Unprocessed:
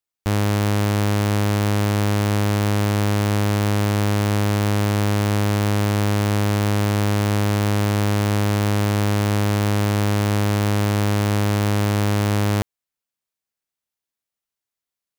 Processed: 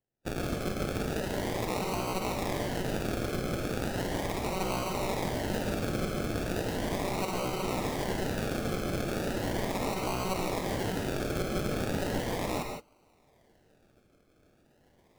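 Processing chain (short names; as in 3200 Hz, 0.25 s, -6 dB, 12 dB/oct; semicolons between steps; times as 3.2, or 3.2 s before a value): formant-preserving pitch shift +10.5 st; inverse Chebyshev high-pass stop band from 360 Hz, stop band 80 dB; reverse; upward compressor, threshold -45 dBFS; reverse; decimation with a swept rate 36×, swing 60% 0.37 Hz; non-linear reverb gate 0.19 s rising, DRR 3 dB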